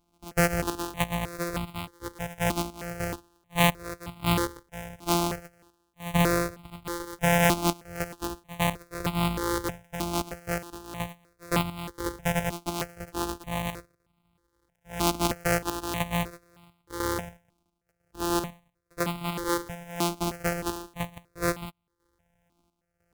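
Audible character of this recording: a buzz of ramps at a fixed pitch in blocks of 256 samples; chopped level 1 Hz, depth 65%, duty 70%; notches that jump at a steady rate 3.2 Hz 480–1700 Hz

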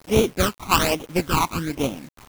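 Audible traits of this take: aliases and images of a low sample rate 1900 Hz, jitter 20%; phasing stages 12, 1.2 Hz, lowest notch 510–1600 Hz; a quantiser's noise floor 8-bit, dither none; tremolo saw down 2.8 Hz, depth 35%

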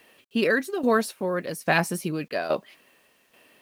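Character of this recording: tremolo saw down 1.2 Hz, depth 70%; a quantiser's noise floor 12-bit, dither none

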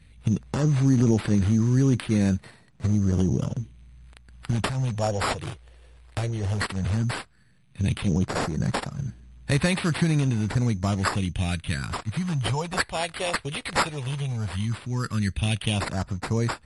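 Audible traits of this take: phasing stages 4, 0.13 Hz, lowest notch 210–4900 Hz; aliases and images of a low sample rate 6200 Hz, jitter 0%; MP3

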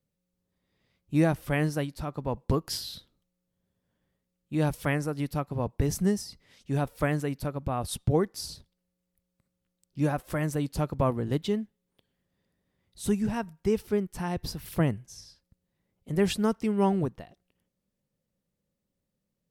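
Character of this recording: noise floor -83 dBFS; spectral tilt -6.5 dB/oct

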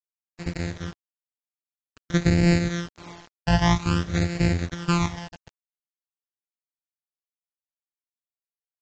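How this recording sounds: a buzz of ramps at a fixed pitch in blocks of 256 samples; phasing stages 12, 0.51 Hz, lowest notch 380–1100 Hz; a quantiser's noise floor 8-bit, dither none; AAC

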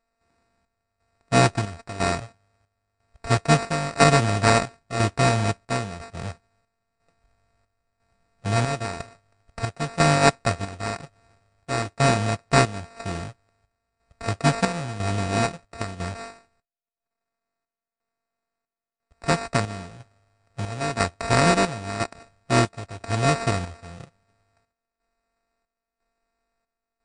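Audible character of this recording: a buzz of ramps at a fixed pitch in blocks of 64 samples; chopped level 1 Hz, depth 65%, duty 65%; aliases and images of a low sample rate 3200 Hz, jitter 0%; MP3

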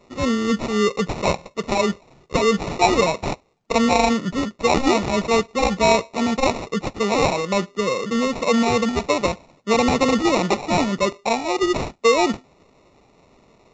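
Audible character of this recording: aliases and images of a low sample rate 1600 Hz, jitter 0%; µ-law

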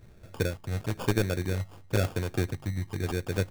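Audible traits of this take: tremolo triangle 3 Hz, depth 40%; phasing stages 8, 1 Hz, lowest notch 400–2200 Hz; aliases and images of a low sample rate 2000 Hz, jitter 0%

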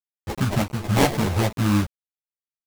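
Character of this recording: aliases and images of a low sample rate 1400 Hz, jitter 20%; tremolo saw up 1.6 Hz, depth 45%; a quantiser's noise floor 6-bit, dither none; a shimmering, thickened sound

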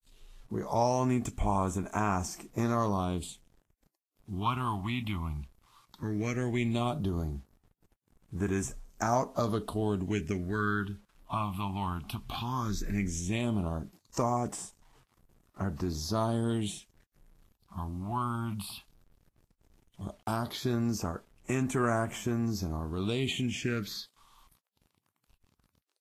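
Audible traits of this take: phasing stages 6, 0.15 Hz, lowest notch 440–4400 Hz; a quantiser's noise floor 10-bit, dither none; Vorbis

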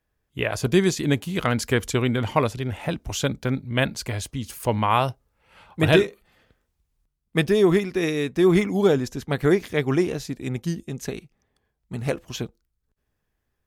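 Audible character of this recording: noise floor -78 dBFS; spectral tilt -5.5 dB/oct

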